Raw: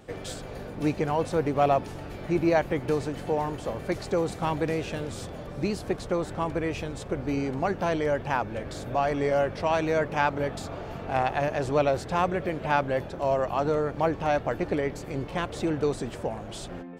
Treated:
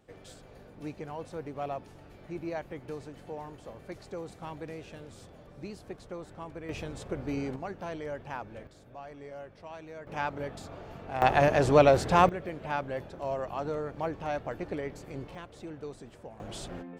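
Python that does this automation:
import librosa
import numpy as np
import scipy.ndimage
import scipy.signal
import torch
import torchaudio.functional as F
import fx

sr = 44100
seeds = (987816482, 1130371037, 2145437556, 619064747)

y = fx.gain(x, sr, db=fx.steps((0.0, -13.5), (6.69, -5.0), (7.56, -11.5), (8.67, -19.5), (10.07, -8.0), (11.22, 4.0), (12.29, -8.0), (15.35, -15.0), (16.4, -2.5)))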